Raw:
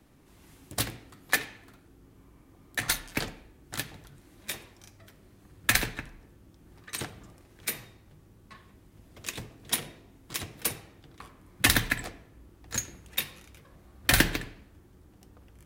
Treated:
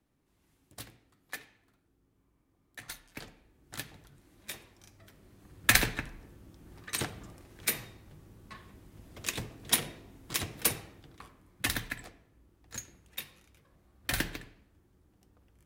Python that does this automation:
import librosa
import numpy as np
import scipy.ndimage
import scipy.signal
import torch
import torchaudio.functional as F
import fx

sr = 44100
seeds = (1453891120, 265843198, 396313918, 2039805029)

y = fx.gain(x, sr, db=fx.line((3.01, -16.0), (3.81, -6.0), (4.63, -6.0), (5.87, 2.0), (10.81, 2.0), (11.72, -10.0)))